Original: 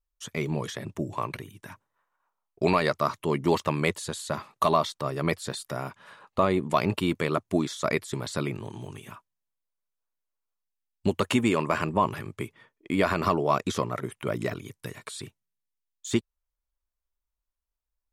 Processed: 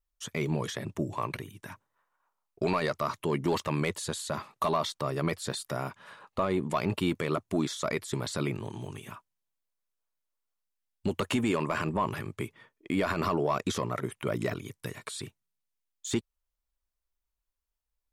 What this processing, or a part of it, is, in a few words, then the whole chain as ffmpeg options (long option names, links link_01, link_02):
soft clipper into limiter: -af "asoftclip=type=tanh:threshold=-11.5dB,alimiter=limit=-18.5dB:level=0:latency=1:release=33"